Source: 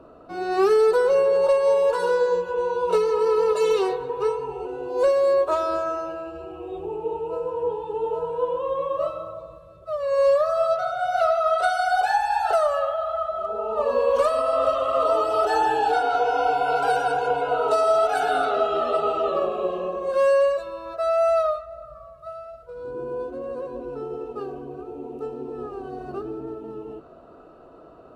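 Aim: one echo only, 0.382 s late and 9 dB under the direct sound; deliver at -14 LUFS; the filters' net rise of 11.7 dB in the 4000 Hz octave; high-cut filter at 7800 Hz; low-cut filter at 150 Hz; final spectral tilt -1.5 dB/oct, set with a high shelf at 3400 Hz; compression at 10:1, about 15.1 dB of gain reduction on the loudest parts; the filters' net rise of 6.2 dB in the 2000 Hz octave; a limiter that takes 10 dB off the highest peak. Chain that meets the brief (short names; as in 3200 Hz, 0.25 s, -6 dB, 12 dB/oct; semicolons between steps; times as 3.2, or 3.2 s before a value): HPF 150 Hz; LPF 7800 Hz; bell 2000 Hz +6 dB; high shelf 3400 Hz +5.5 dB; bell 4000 Hz +9 dB; compressor 10:1, threshold -30 dBFS; limiter -30.5 dBFS; echo 0.382 s -9 dB; gain +23.5 dB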